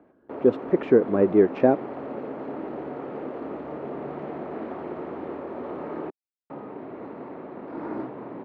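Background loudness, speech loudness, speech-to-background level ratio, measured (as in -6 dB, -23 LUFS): -35.5 LUFS, -21.5 LUFS, 14.0 dB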